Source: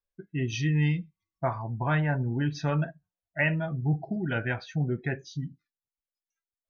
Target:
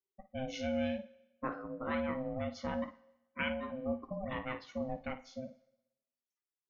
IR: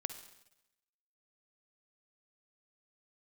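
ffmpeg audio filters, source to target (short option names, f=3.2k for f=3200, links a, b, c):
-filter_complex "[0:a]aeval=exprs='val(0)*sin(2*PI*390*n/s)':c=same,asplit=2[a][b];[1:a]atrim=start_sample=2205,lowshelf=f=230:g=-10,adelay=55[c];[b][c]afir=irnorm=-1:irlink=0,volume=-10.5dB[d];[a][d]amix=inputs=2:normalize=0,volume=-7dB"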